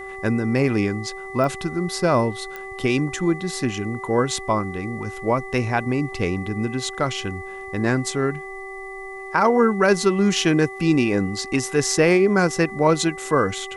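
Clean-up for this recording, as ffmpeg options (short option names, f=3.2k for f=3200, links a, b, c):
-af "adeclick=t=4,bandreject=f=385.2:t=h:w=4,bandreject=f=770.4:t=h:w=4,bandreject=f=1.1556k:t=h:w=4,bandreject=f=2k:w=30,agate=range=-21dB:threshold=-27dB"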